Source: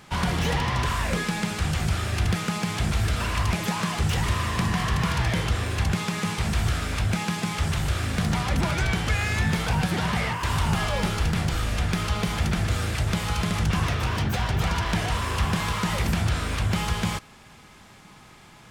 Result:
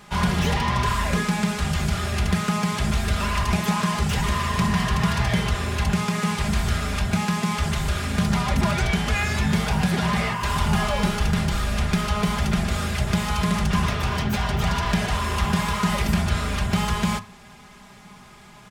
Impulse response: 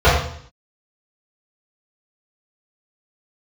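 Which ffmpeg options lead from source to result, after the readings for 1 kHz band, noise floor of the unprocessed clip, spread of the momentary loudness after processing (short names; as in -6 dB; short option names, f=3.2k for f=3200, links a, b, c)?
+3.5 dB, -50 dBFS, 3 LU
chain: -filter_complex "[0:a]aecho=1:1:4.9:0.7,asplit=2[a][b];[1:a]atrim=start_sample=2205,asetrate=66150,aresample=44100[c];[b][c]afir=irnorm=-1:irlink=0,volume=-37dB[d];[a][d]amix=inputs=2:normalize=0"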